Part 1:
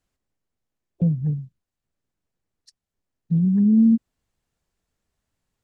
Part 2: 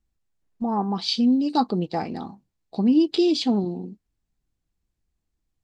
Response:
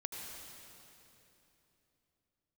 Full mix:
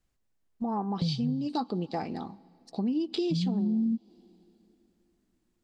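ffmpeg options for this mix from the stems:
-filter_complex "[0:a]volume=-2.5dB[link_01];[1:a]volume=-4.5dB,asplit=2[link_02][link_03];[link_03]volume=-22.5dB[link_04];[2:a]atrim=start_sample=2205[link_05];[link_04][link_05]afir=irnorm=-1:irlink=0[link_06];[link_01][link_02][link_06]amix=inputs=3:normalize=0,acompressor=threshold=-27dB:ratio=4"

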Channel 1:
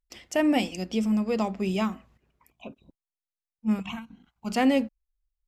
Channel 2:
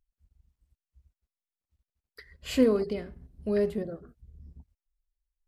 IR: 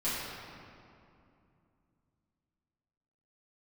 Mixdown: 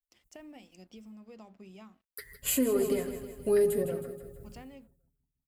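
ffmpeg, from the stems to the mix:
-filter_complex "[0:a]highpass=57,acompressor=threshold=-29dB:ratio=6,aeval=exprs='sgn(val(0))*max(abs(val(0))-0.002,0)':channel_layout=same,volume=-17.5dB[link_01];[1:a]aexciter=amount=9.6:drive=5.2:freq=7200,aecho=1:1:7.3:0.64,agate=range=-33dB:threshold=-55dB:ratio=3:detection=peak,volume=1.5dB,asplit=2[link_02][link_03];[link_03]volume=-11.5dB,aecho=0:1:159|318|477|636|795|954|1113:1|0.49|0.24|0.118|0.0576|0.0282|0.0138[link_04];[link_01][link_02][link_04]amix=inputs=3:normalize=0,alimiter=limit=-18dB:level=0:latency=1:release=266"

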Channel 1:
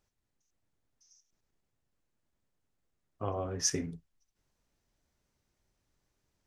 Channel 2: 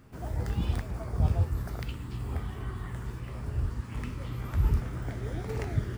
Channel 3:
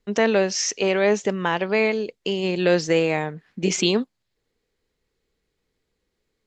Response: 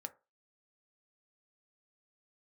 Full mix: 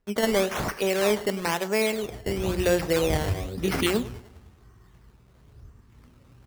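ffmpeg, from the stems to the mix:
-filter_complex "[0:a]lowpass=2000,lowshelf=frequency=460:gain=8,volume=1dB[link_01];[1:a]adelay=1900,volume=0.5dB,asplit=2[link_02][link_03];[link_03]volume=-14dB[link_04];[2:a]bandreject=frequency=60:width_type=h:width=6,bandreject=frequency=120:width_type=h:width=6,bandreject=frequency=180:width_type=h:width=6,volume=0.5dB,asplit=3[link_05][link_06][link_07];[link_06]volume=-16.5dB[link_08];[link_07]apad=whole_len=347361[link_09];[link_02][link_09]sidechaingate=range=-33dB:threshold=-43dB:ratio=16:detection=peak[link_10];[link_04][link_08]amix=inputs=2:normalize=0,aecho=0:1:102|204|306|408|510|612|714:1|0.49|0.24|0.118|0.0576|0.0282|0.0138[link_11];[link_01][link_10][link_05][link_11]amix=inputs=4:normalize=0,acrusher=samples=12:mix=1:aa=0.000001:lfo=1:lforange=12:lforate=1,flanger=delay=4.4:depth=5.8:regen=-84:speed=0.59:shape=sinusoidal"

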